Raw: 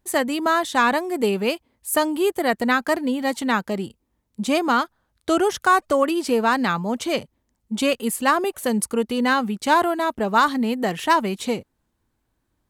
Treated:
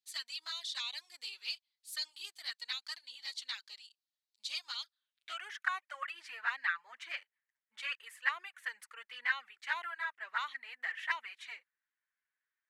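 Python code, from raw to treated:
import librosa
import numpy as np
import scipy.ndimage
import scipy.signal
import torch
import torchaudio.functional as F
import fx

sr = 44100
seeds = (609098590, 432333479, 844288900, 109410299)

y = scipy.signal.sosfilt(scipy.signal.butter(2, 1400.0, 'highpass', fs=sr, output='sos'), x)
y = fx.env_flanger(y, sr, rest_ms=8.8, full_db=-20.0)
y = fx.filter_sweep_bandpass(y, sr, from_hz=4300.0, to_hz=1800.0, start_s=4.89, end_s=5.52, q=3.5)
y = F.gain(torch.from_numpy(y), 1.0).numpy()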